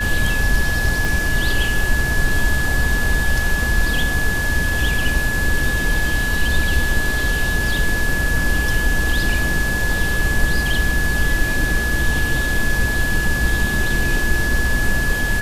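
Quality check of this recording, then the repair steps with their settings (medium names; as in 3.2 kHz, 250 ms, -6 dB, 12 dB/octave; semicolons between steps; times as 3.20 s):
whine 1.7 kHz -21 dBFS
1.05 s: pop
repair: de-click; band-stop 1.7 kHz, Q 30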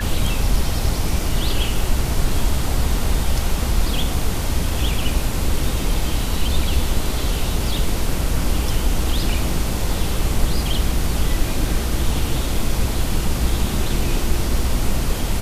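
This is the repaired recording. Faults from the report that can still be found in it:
1.05 s: pop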